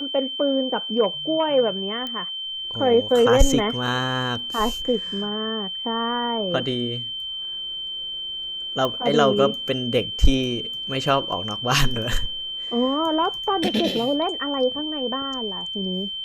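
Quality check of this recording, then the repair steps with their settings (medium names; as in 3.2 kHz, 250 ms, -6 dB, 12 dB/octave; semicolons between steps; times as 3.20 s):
whine 3.1 kHz -28 dBFS
2.07 s: pop -17 dBFS
8.85 s: pop -12 dBFS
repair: de-click; band-stop 3.1 kHz, Q 30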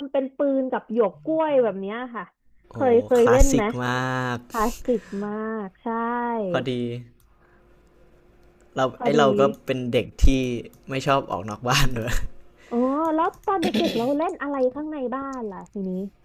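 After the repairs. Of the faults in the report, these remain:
nothing left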